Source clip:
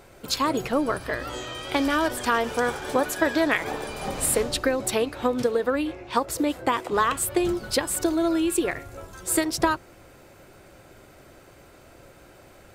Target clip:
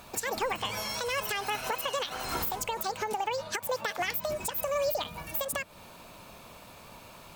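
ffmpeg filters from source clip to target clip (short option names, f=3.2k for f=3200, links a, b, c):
-filter_complex "[0:a]highshelf=f=2.4k:g=4.5,bandreject=f=1.1k:w=17,asplit=2[a][b];[b]acompressor=threshold=-31dB:ratio=6,volume=0dB[c];[a][c]amix=inputs=2:normalize=0,alimiter=limit=-14dB:level=0:latency=1:release=461,asetrate=76440,aresample=44100,volume=-6dB"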